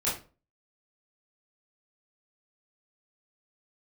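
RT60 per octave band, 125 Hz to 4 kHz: 0.40, 0.40, 0.40, 0.30, 0.30, 0.25 seconds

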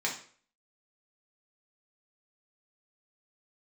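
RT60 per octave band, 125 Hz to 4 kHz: 0.45, 0.50, 0.50, 0.45, 0.45, 0.40 seconds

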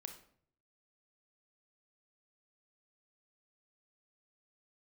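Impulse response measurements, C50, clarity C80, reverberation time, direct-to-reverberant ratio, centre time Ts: 9.0 dB, 12.5 dB, 0.60 s, 5.5 dB, 14 ms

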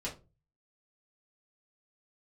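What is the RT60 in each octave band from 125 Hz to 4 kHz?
0.60, 0.40, 0.35, 0.25, 0.20, 0.20 seconds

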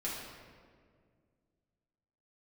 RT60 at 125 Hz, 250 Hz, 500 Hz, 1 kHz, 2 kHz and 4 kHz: 2.8, 2.6, 2.2, 1.7, 1.5, 1.1 seconds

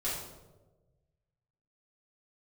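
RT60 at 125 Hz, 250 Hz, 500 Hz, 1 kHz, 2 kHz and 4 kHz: 1.9, 1.3, 1.4, 0.95, 0.70, 0.65 seconds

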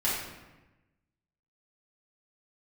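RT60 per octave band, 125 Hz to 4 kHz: 1.4, 1.3, 1.1, 1.1, 1.0, 0.75 seconds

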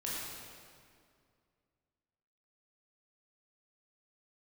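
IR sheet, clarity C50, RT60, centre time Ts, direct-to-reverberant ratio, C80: −2.5 dB, 2.2 s, 134 ms, −7.0 dB, −0.5 dB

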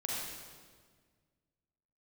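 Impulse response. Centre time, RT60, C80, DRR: 107 ms, 1.7 s, 0.0 dB, −4.5 dB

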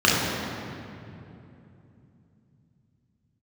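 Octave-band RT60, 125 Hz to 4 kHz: 4.9, 4.4, 3.2, 2.6, 2.3, 1.7 seconds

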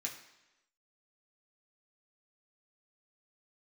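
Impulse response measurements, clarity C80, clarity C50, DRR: 11.0 dB, 8.5 dB, −2.0 dB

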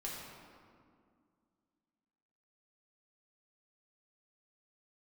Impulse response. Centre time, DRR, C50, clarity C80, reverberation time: 108 ms, −5.0 dB, −0.5 dB, 1.5 dB, 2.1 s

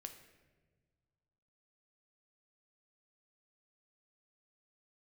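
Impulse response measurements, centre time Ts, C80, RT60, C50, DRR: 18 ms, 11.0 dB, 1.5 s, 9.5 dB, 6.0 dB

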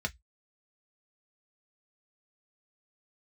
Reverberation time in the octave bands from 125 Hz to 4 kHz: 0.20, 0.10, 0.05, 0.10, 0.15, 0.15 seconds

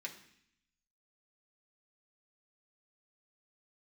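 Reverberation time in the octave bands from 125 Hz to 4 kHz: 1.0, 0.90, 0.65, 0.65, 0.85, 0.80 seconds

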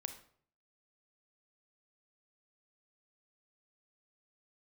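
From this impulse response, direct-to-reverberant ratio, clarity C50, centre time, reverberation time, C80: 7.5 dB, 10.0 dB, 11 ms, 0.55 s, 14.0 dB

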